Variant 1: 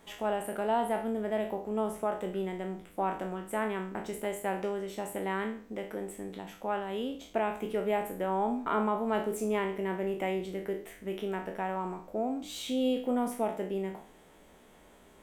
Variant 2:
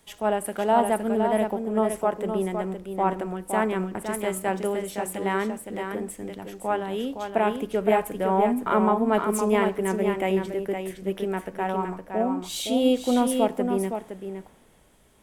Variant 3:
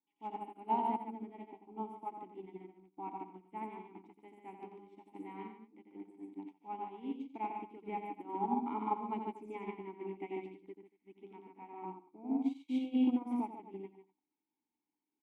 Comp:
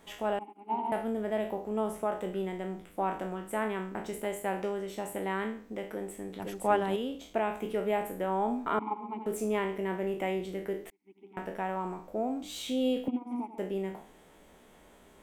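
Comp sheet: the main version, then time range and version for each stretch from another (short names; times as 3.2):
1
0.39–0.92 from 3
6.4–6.96 from 2
8.79–9.26 from 3
10.9–11.37 from 3
13.08–13.58 from 3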